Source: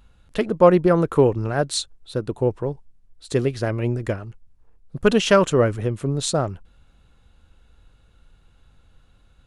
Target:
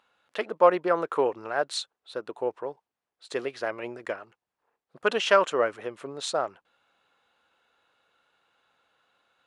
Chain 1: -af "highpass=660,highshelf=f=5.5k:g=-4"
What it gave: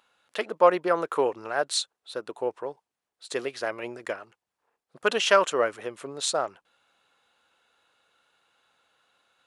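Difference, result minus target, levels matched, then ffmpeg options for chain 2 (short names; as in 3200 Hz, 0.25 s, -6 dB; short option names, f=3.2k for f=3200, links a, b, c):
8000 Hz band +6.5 dB
-af "highpass=660,highshelf=f=5.5k:g=-15.5"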